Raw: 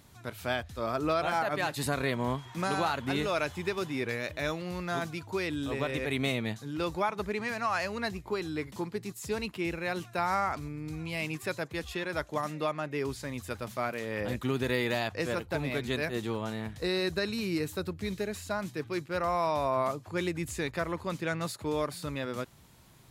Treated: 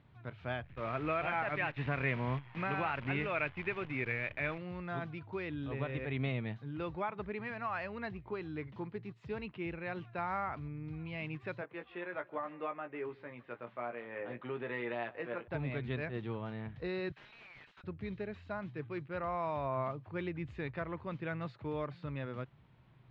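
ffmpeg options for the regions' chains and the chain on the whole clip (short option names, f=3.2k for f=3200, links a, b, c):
-filter_complex "[0:a]asettb=1/sr,asplit=3[a][b][c];[a]atrim=end=0.644[d];[b]atrim=start=0.64:end=4.58,asetpts=PTS-STARTPTS,afade=t=in:d=0.004:c=qsin,afade=t=out:st=3.936:d=0.004:c=qsin,lowpass=f=2.4k:t=q:w=3.1,acrusher=bits=7:dc=4:mix=0:aa=0.000001[e];[c]atrim=start=4.576[f];[d][e]acrossfade=d=0.004:c1=hsin:c2=qsin[g];[g][f]acrossfade=d=0.004:c1=qsin:c2=hsin,asettb=1/sr,asplit=3[h][i][j];[h]atrim=end=11.614[k];[i]atrim=start=11.61:end=15.48,asetpts=PTS-STARTPTS,afade=t=in:d=0.004:c=qsin,afade=t=out:st=3.866:d=0.004:c=qsin,highpass=330,lowpass=2.6k,asplit=2[l][m];[m]adelay=17,volume=-6dB[n];[l][n]amix=inputs=2:normalize=0,atrim=end_sample=170667,aecho=1:1:152:0.0794,atrim=end_sample=170667[o];[j]atrim=start=15.476[p];[k][o]acrossfade=d=0.004:c1=hsin:c2=qsin[q];[q][p]acrossfade=d=0.004:c1=qsin:c2=hsin,asettb=1/sr,asplit=3[r][s][t];[r]atrim=end=17.124[u];[s]atrim=start=17.12:end=17.84,asetpts=PTS-STARTPTS,afade=t=in:d=0.004:c=qsin,afade=t=out:st=0.716:d=0.004:c=qsin,highpass=f=1.5k:w=0.5412,highpass=f=1.5k:w=1.3066,aeval=exprs='(mod(75*val(0)+1,2)-1)/75':c=same[v];[t]atrim=start=17.836[w];[u][v]acrossfade=d=0.004:c1=hsin:c2=qsin[x];[x][w]acrossfade=d=0.004:c1=qsin:c2=hsin,lowpass=f=3k:w=0.5412,lowpass=f=3k:w=1.3066,equalizer=f=130:t=o:w=0.49:g=8.5,volume=-7.5dB"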